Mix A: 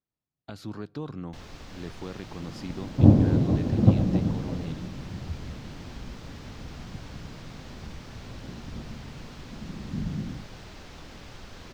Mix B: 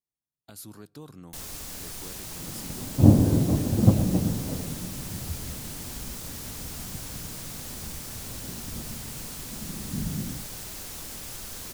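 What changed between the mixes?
speech −9.0 dB
master: remove high-frequency loss of the air 210 metres

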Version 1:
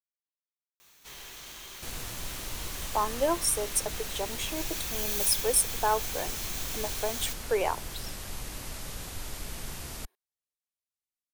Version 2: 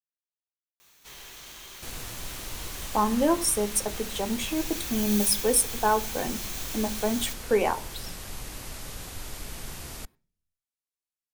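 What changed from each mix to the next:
speech: remove high-pass filter 350 Hz 24 dB per octave
reverb: on, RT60 0.45 s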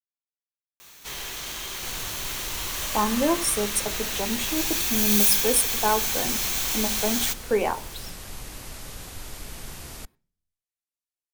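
first sound +10.5 dB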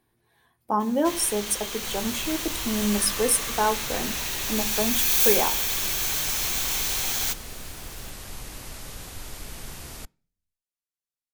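speech: entry −2.25 s

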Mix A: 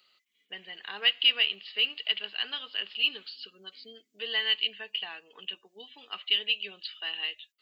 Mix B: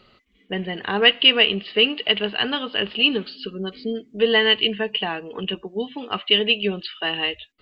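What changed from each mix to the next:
master: remove first difference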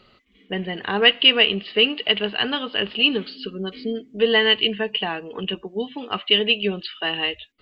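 background +5.5 dB

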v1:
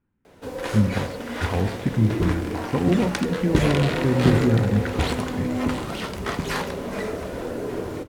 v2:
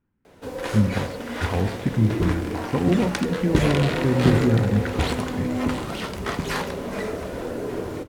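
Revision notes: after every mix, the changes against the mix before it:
nothing changed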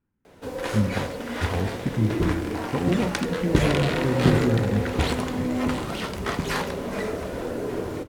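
speech −3.5 dB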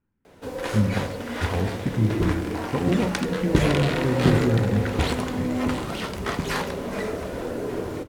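speech: send +11.0 dB

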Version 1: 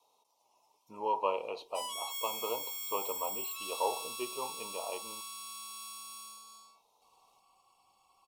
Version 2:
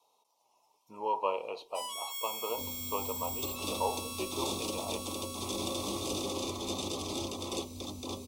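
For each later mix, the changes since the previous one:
second sound: unmuted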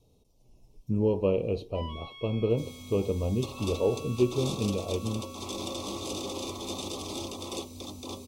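speech: remove high-pass with resonance 950 Hz, resonance Q 5.6
first sound: add low-pass filter 3,000 Hz 24 dB per octave

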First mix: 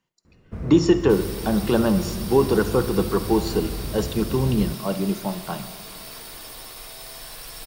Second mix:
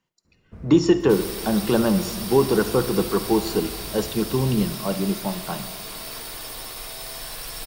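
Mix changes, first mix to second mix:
first sound −8.5 dB
second sound +4.0 dB

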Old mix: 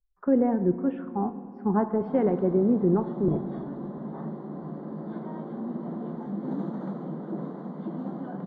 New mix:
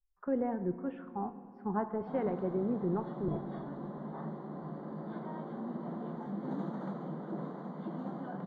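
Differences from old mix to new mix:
speech −4.5 dB
master: add parametric band 270 Hz −7 dB 2.2 octaves

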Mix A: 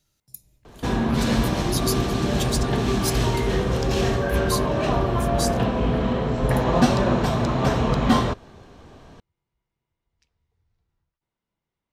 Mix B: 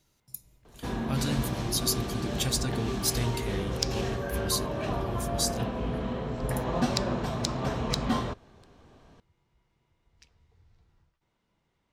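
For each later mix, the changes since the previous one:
first sound −9.5 dB
second sound +10.0 dB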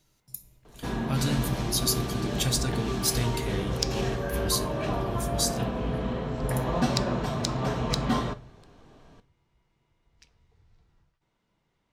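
reverb: on, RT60 0.40 s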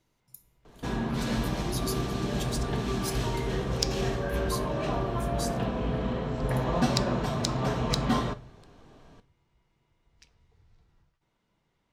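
speech −10.5 dB

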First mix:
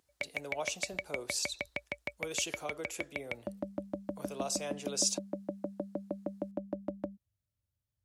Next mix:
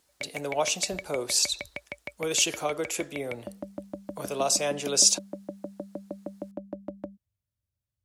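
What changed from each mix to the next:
speech +11.0 dB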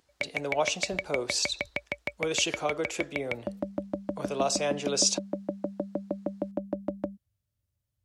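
speech: add high-frequency loss of the air 80 metres
background +5.5 dB

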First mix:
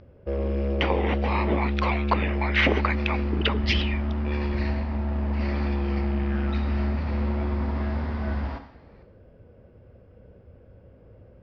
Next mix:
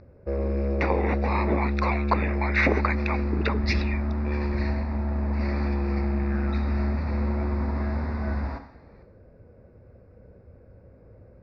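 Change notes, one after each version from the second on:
master: add Butterworth band-reject 3,100 Hz, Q 2.4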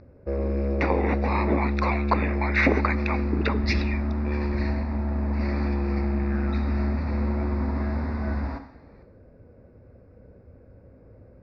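speech: send +6.0 dB
master: add parametric band 270 Hz +5 dB 0.35 octaves

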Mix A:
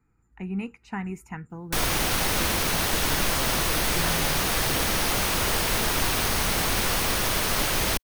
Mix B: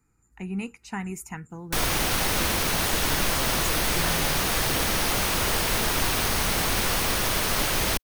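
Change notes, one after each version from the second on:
speech: add bass and treble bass −1 dB, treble +14 dB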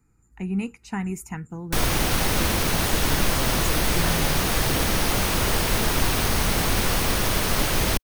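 master: add low-shelf EQ 430 Hz +6 dB

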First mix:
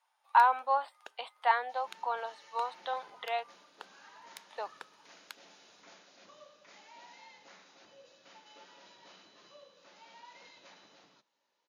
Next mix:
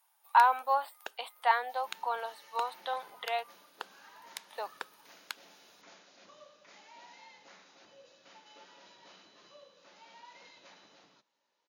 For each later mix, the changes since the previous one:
speech: remove high-frequency loss of the air 94 metres
first sound +7.0 dB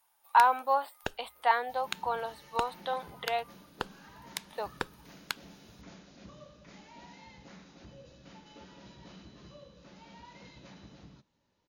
first sound +5.5 dB
master: remove high-pass filter 580 Hz 12 dB per octave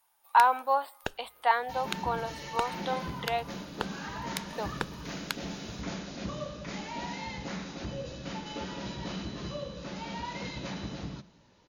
second sound +11.0 dB
reverb: on, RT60 1.1 s

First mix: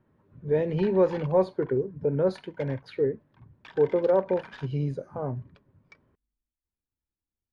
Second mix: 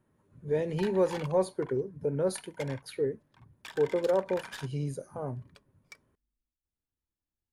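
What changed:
speech −5.0 dB
master: remove high-frequency loss of the air 230 metres

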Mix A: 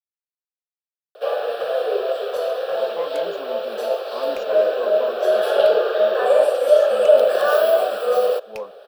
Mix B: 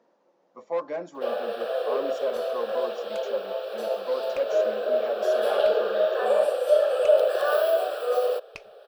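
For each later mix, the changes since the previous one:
speech: entry −2.25 s
first sound −6.0 dB
second sound: add high-frequency loss of the air 61 metres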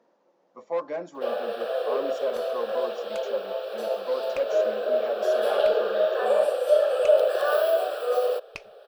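second sound +3.0 dB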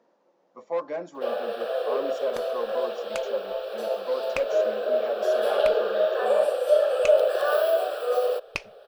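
second sound +8.5 dB

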